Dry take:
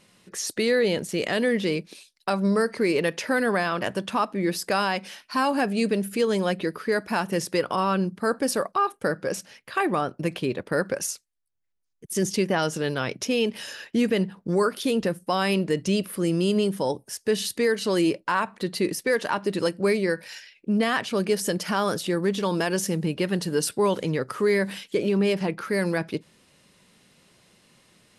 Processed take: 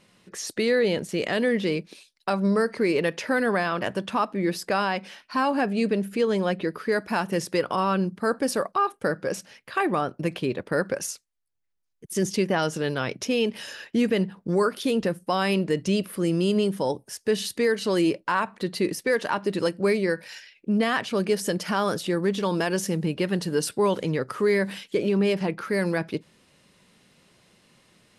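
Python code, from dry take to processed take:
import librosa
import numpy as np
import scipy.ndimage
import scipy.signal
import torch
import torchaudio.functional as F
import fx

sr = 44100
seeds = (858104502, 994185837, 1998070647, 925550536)

y = fx.high_shelf(x, sr, hz=5800.0, db=fx.steps((0.0, -6.5), (4.64, -12.0), (6.74, -4.0)))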